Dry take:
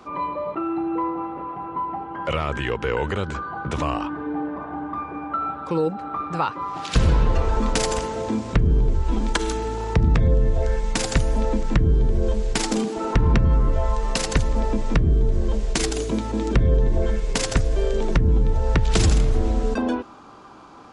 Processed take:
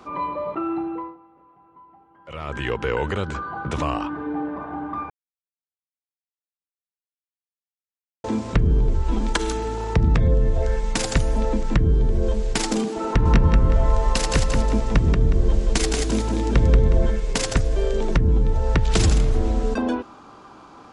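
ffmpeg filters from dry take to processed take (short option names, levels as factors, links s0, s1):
-filter_complex "[0:a]asettb=1/sr,asplit=3[s0][s1][s2];[s0]atrim=end=13.074[s3];[s1]atrim=start=13.07:end=17.09,asetpts=PTS-STARTPTS,afade=t=in:d=0.004:c=qsin,afade=t=out:st=4.016:d=0.004:c=qsin,aecho=1:1:182|364|546|728:0.631|0.208|0.0687|0.0227,atrim=end_sample=177282[s4];[s2]atrim=start=17.086[s5];[s3][s4]acrossfade=d=0.004:c1=hsin:c2=qsin[s6];[s6][s5]acrossfade=d=0.004:c1=qsin:c2=hsin,asplit=5[s7][s8][s9][s10][s11];[s7]atrim=end=1.18,asetpts=PTS-STARTPTS,afade=t=out:st=0.74:d=0.44:silence=0.0749894[s12];[s8]atrim=start=1.18:end=2.25,asetpts=PTS-STARTPTS,volume=0.075[s13];[s9]atrim=start=2.25:end=5.1,asetpts=PTS-STARTPTS,afade=t=in:d=0.44:silence=0.0749894,afade=t=out:st=2.846:d=0.004:c=hsin[s14];[s10]atrim=start=5.1:end=8.24,asetpts=PTS-STARTPTS,volume=0[s15];[s11]atrim=start=8.24,asetpts=PTS-STARTPTS,afade=t=in:d=0.004:c=hsin[s16];[s12][s13][s14][s15][s16]concat=n=5:v=0:a=1"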